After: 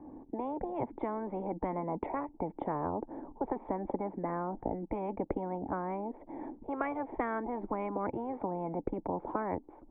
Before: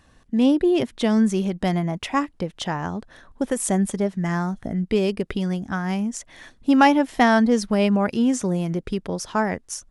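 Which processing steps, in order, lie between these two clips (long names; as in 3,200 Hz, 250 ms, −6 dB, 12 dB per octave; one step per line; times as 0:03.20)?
formant resonators in series u
three-way crossover with the lows and the highs turned down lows −15 dB, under 280 Hz, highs −15 dB, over 2,400 Hz
every bin compressed towards the loudest bin 10 to 1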